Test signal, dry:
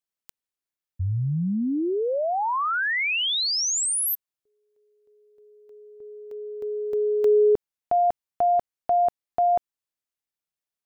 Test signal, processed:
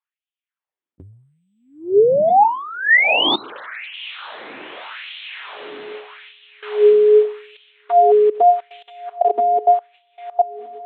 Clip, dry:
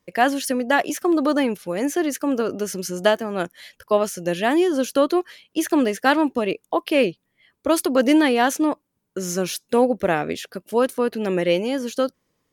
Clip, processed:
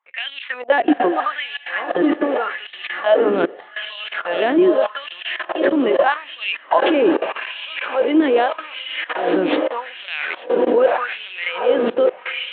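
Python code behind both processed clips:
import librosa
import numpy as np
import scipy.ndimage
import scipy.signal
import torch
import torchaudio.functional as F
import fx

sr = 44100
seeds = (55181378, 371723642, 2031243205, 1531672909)

p1 = scipy.ndimage.median_filter(x, 9, mode='constant')
p2 = fx.rider(p1, sr, range_db=5, speed_s=0.5)
p3 = p1 + (p2 * librosa.db_to_amplitude(2.5))
p4 = fx.dynamic_eq(p3, sr, hz=2800.0, q=0.77, threshold_db=-32.0, ratio=3.0, max_db=3)
p5 = fx.lpc_vocoder(p4, sr, seeds[0], excitation='pitch_kept', order=8)
p6 = p5 + fx.echo_diffused(p5, sr, ms=850, feedback_pct=57, wet_db=-8.0, dry=0)
p7 = fx.level_steps(p6, sr, step_db=20)
p8 = fx.filter_lfo_highpass(p7, sr, shape='sine', hz=0.82, low_hz=290.0, high_hz=3100.0, q=2.7)
y = p8 * librosa.db_to_amplitude(3.0)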